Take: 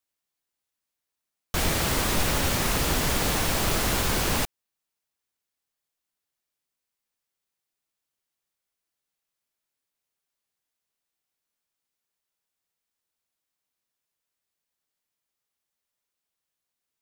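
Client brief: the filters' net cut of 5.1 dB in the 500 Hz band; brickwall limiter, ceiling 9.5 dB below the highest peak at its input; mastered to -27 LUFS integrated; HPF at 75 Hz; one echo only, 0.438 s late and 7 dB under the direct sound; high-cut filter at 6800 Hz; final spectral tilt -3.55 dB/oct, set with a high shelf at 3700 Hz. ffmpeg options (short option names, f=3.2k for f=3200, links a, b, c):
-af "highpass=75,lowpass=6.8k,equalizer=f=500:t=o:g=-6.5,highshelf=f=3.7k:g=-4,alimiter=level_in=1.5dB:limit=-24dB:level=0:latency=1,volume=-1.5dB,aecho=1:1:438:0.447,volume=6.5dB"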